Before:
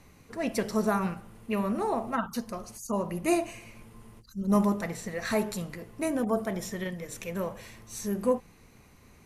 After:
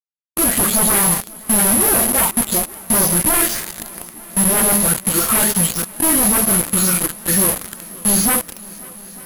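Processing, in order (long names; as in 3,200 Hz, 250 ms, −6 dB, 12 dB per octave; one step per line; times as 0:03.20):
every frequency bin delayed by itself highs late, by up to 250 ms
reversed playback
upward compression, threshold −38 dBFS
reversed playback
bit-depth reduction 6 bits, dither none
bad sample-rate conversion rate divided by 3×, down filtered, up zero stuff
sine wavefolder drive 15 dB, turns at −5 dBFS
on a send: feedback echo with a long and a short gap by turns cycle 894 ms, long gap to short 1.5 to 1, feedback 71%, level −23 dB
on the sum: formants moved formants −5 semitones
level −3 dB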